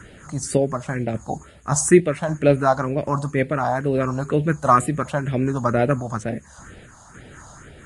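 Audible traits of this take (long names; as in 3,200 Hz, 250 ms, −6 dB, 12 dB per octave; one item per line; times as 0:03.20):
sample-and-hold tremolo
a quantiser's noise floor 10 bits, dither none
phaser sweep stages 4, 2.1 Hz, lowest notch 380–1,100 Hz
Ogg Vorbis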